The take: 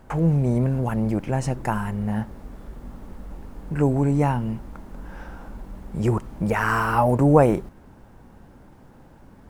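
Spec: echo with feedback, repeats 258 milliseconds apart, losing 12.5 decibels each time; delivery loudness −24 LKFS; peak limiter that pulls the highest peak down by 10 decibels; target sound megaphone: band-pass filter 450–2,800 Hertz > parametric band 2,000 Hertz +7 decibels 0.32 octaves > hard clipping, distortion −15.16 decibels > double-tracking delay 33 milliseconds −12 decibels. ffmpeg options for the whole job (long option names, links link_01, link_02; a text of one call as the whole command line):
ffmpeg -i in.wav -filter_complex "[0:a]alimiter=limit=-13.5dB:level=0:latency=1,highpass=450,lowpass=2800,equalizer=frequency=2000:width_type=o:width=0.32:gain=7,aecho=1:1:258|516|774:0.237|0.0569|0.0137,asoftclip=type=hard:threshold=-21dB,asplit=2[link_01][link_02];[link_02]adelay=33,volume=-12dB[link_03];[link_01][link_03]amix=inputs=2:normalize=0,volume=6.5dB" out.wav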